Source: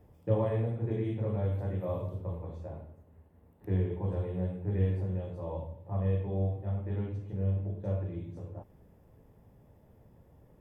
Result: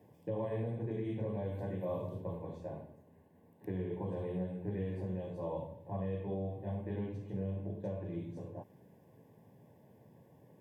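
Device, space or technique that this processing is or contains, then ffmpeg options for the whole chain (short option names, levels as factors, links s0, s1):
PA system with an anti-feedback notch: -af "highpass=f=120:w=0.5412,highpass=f=120:w=1.3066,asuperstop=centerf=1300:order=20:qfactor=4.5,alimiter=level_in=1.88:limit=0.0631:level=0:latency=1:release=243,volume=0.531,volume=1.12"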